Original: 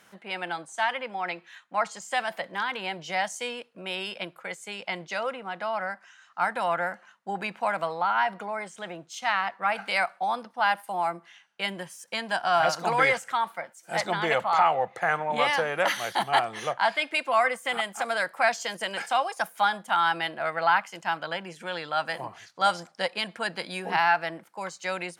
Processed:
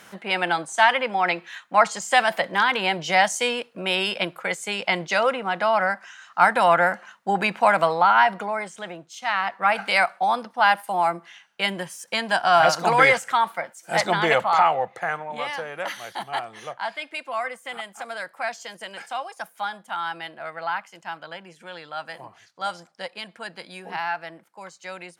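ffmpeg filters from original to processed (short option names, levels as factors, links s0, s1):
-af "volume=7.08,afade=t=out:st=7.87:d=1.3:silence=0.281838,afade=t=in:st=9.17:d=0.49:silence=0.421697,afade=t=out:st=14.21:d=1.11:silence=0.266073"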